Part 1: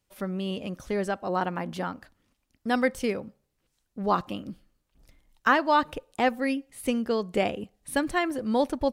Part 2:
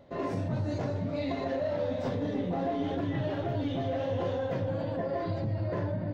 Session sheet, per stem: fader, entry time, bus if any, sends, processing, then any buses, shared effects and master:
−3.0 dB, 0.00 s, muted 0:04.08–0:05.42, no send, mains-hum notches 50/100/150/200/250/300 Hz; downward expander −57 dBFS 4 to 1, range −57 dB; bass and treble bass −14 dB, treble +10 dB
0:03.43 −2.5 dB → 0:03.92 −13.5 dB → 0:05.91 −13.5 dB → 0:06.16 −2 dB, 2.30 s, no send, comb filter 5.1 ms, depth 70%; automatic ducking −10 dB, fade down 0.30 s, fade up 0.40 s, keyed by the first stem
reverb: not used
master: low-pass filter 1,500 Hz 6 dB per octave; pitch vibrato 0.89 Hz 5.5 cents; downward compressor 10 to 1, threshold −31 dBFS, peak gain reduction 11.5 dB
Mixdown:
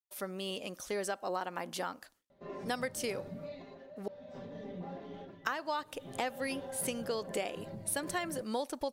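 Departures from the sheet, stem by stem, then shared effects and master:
stem 1: missing mains-hum notches 50/100/150/200/250/300 Hz
master: missing low-pass filter 1,500 Hz 6 dB per octave

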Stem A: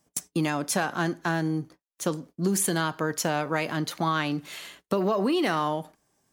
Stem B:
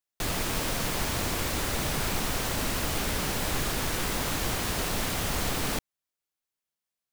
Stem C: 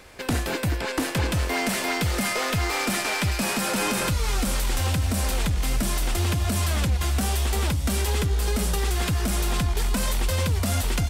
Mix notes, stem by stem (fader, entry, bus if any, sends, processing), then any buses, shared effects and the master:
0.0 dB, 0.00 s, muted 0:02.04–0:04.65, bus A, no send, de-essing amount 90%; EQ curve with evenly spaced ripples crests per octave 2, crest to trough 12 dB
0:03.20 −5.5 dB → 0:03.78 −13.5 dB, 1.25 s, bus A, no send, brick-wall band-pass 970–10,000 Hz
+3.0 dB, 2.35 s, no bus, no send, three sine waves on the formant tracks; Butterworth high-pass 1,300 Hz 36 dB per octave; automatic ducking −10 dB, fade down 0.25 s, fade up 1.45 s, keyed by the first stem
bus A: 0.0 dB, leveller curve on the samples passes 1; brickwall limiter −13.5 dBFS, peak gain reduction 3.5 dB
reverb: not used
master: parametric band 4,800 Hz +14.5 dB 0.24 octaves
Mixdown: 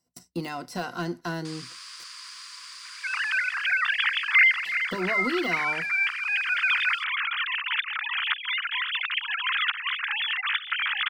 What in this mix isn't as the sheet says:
stem A 0.0 dB → −9.5 dB
stem B −5.5 dB → −15.5 dB
stem C: entry 2.35 s → 2.85 s

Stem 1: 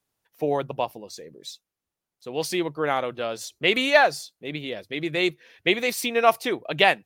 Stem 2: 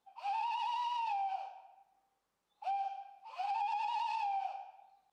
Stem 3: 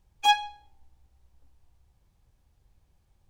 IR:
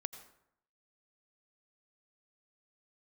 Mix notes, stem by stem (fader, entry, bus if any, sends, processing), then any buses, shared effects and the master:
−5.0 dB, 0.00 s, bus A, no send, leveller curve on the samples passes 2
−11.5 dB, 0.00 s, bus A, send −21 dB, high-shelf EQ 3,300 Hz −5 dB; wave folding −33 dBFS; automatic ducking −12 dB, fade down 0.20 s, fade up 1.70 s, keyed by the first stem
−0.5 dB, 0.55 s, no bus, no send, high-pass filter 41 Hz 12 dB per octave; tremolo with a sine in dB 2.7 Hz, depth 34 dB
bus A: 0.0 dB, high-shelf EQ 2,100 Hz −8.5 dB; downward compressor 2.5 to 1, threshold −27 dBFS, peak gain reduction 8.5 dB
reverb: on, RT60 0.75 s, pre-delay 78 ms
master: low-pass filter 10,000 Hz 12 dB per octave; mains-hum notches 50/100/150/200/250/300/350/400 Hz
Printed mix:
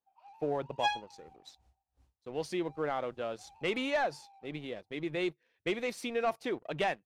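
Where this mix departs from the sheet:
stem 1 −5.0 dB → −14.5 dB
master: missing mains-hum notches 50/100/150/200/250/300/350/400 Hz

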